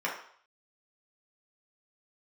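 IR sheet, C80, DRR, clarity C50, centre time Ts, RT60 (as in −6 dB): 9.5 dB, −4.5 dB, 5.0 dB, 32 ms, 0.60 s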